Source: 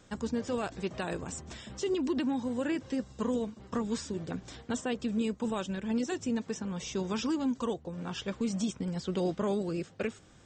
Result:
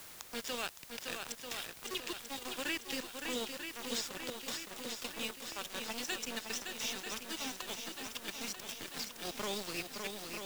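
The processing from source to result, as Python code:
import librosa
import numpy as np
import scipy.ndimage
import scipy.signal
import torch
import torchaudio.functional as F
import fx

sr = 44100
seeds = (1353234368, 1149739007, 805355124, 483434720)

y = fx.weighting(x, sr, curve='D')
y = fx.spec_box(y, sr, start_s=4.06, length_s=1.86, low_hz=480.0, high_hz=1500.0, gain_db=11)
y = fx.low_shelf(y, sr, hz=490.0, db=-10.5)
y = fx.rider(y, sr, range_db=10, speed_s=0.5)
y = fx.auto_swell(y, sr, attack_ms=159.0)
y = np.where(np.abs(y) >= 10.0 ** (-34.5 / 20.0), y, 0.0)
y = fx.dmg_noise_colour(y, sr, seeds[0], colour='white', level_db=-54.0)
y = fx.echo_swing(y, sr, ms=940, ratio=1.5, feedback_pct=54, wet_db=-7.0)
y = fx.band_squash(y, sr, depth_pct=40)
y = F.gain(torch.from_numpy(y), -3.0).numpy()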